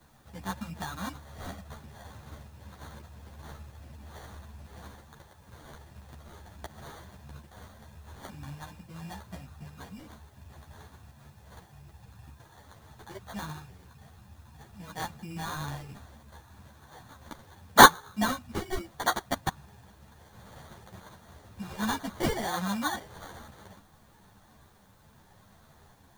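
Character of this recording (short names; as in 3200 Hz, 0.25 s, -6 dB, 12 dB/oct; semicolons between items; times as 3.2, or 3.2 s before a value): aliases and images of a low sample rate 2600 Hz, jitter 0%; tremolo saw up 0.81 Hz, depth 30%; a quantiser's noise floor 12-bit, dither triangular; a shimmering, thickened sound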